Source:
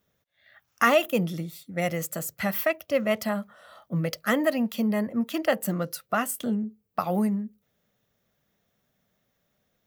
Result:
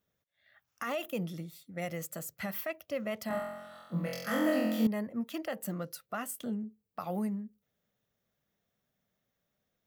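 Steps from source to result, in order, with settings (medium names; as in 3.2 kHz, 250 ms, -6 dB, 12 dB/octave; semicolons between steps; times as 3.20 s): peak limiter -17 dBFS, peak gain reduction 11.5 dB; 3.28–4.87 s: flutter echo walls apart 3.9 m, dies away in 1.1 s; trim -8.5 dB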